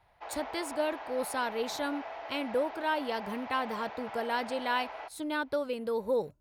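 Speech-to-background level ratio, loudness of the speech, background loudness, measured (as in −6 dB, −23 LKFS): 9.0 dB, −33.5 LKFS, −42.5 LKFS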